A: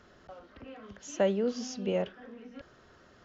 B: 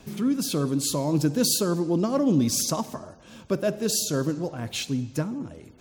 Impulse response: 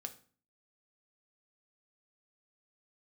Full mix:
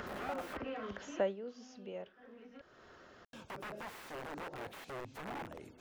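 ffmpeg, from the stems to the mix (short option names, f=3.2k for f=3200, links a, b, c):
-filter_complex "[0:a]acompressor=mode=upward:threshold=-28dB:ratio=2.5,volume=-2dB,afade=t=out:st=1.12:d=0.24:silence=0.251189[a];[1:a]alimiter=limit=-19.5dB:level=0:latency=1:release=35,acompressor=threshold=-34dB:ratio=4,aeval=exprs='(mod(47.3*val(0)+1,2)-1)/47.3':c=same,volume=-3dB,asplit=3[b][c][d];[b]atrim=end=0.57,asetpts=PTS-STARTPTS,afade=t=out:st=0.566:d=0.004:c=hsin[e];[c]atrim=start=0.57:end=3.33,asetpts=PTS-STARTPTS,volume=0[f];[d]atrim=start=3.33,asetpts=PTS-STARTPTS,afade=t=in:d=0.004:c=hsin[g];[e][f][g]concat=n=3:v=0:a=1[h];[a][h]amix=inputs=2:normalize=0,acrossover=split=2600[i][j];[j]acompressor=threshold=-54dB:ratio=4:attack=1:release=60[k];[i][k]amix=inputs=2:normalize=0,bass=f=250:g=-7,treble=f=4k:g=-4"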